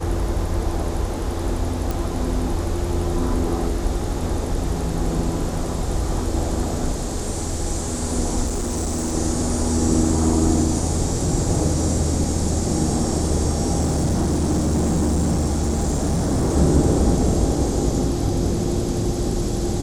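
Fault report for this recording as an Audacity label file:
1.910000	1.910000	click
8.460000	9.150000	clipping −20 dBFS
13.800000	16.570000	clipping −16 dBFS

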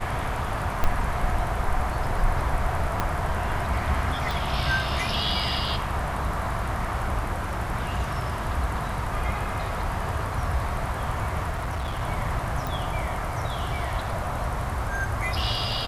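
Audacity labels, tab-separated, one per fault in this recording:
0.840000	0.840000	click −10 dBFS
3.000000	3.000000	click −10 dBFS
4.310000	4.310000	click
11.500000	12.020000	clipping −25.5 dBFS
12.670000	12.670000	click

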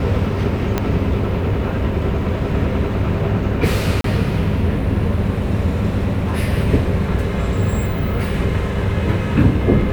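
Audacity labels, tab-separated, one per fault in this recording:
0.780000	0.780000	click −4 dBFS
4.010000	4.040000	drop-out 33 ms

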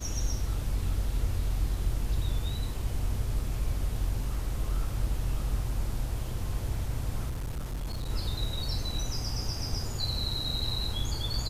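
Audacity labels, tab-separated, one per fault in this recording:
7.290000	8.100000	clipping −30.5 dBFS

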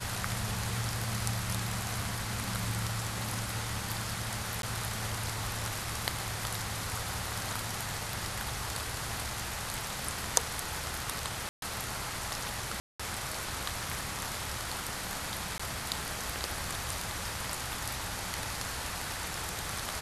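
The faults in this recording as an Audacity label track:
4.620000	4.630000	drop-out 12 ms
11.490000	11.620000	drop-out 132 ms
12.800000	12.990000	drop-out 195 ms
15.580000	15.600000	drop-out 15 ms

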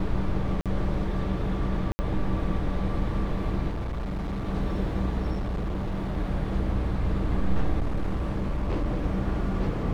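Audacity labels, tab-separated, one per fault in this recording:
0.610000	0.660000	drop-out 47 ms
1.920000	1.990000	drop-out 70 ms
3.690000	4.490000	clipping −27.5 dBFS
5.320000	6.180000	clipping −25.5 dBFS
7.790000	8.880000	clipping −22.5 dBFS

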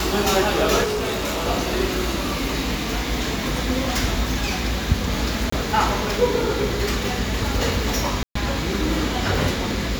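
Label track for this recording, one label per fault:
0.830000	1.470000	clipping −21 dBFS
5.500000	5.520000	drop-out 24 ms
8.230000	8.350000	drop-out 124 ms

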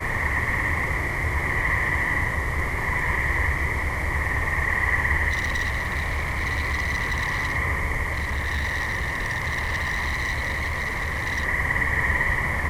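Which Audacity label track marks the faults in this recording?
5.300000	7.570000	clipping −21.5 dBFS
8.120000	11.450000	clipping −22.5 dBFS

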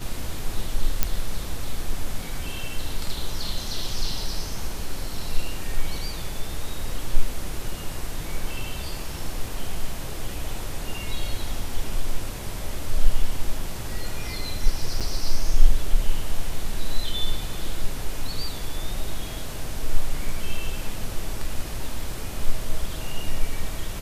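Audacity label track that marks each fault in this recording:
1.030000	1.030000	click −4 dBFS
15.000000	15.010000	drop-out 6.7 ms

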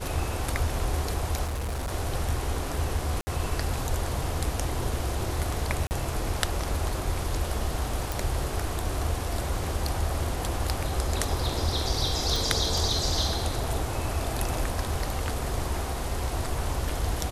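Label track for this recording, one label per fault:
1.440000	1.910000	clipping −27.5 dBFS
3.210000	3.270000	drop-out 60 ms
5.870000	5.910000	drop-out 39 ms
8.120000	8.120000	click
12.360000	12.360000	click

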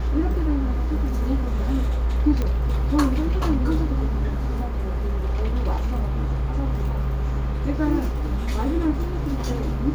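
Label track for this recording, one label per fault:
2.420000	2.420000	click −13 dBFS

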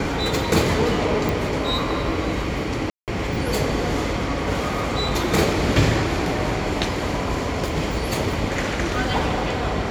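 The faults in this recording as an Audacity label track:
1.290000	1.290000	click
2.900000	3.080000	drop-out 178 ms

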